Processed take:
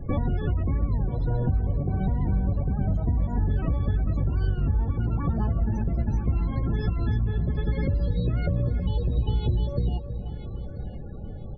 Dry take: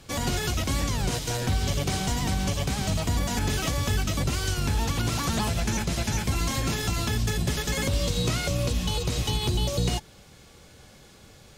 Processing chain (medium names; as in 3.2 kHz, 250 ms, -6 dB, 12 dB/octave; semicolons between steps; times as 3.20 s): tilt EQ -3 dB/octave; compression 8:1, threshold -28 dBFS, peak gain reduction 18 dB; echo from a far wall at 55 m, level -11 dB; loudest bins only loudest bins 32; on a send: feedback delay 987 ms, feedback 31%, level -15 dB; on the sum: trim +6 dB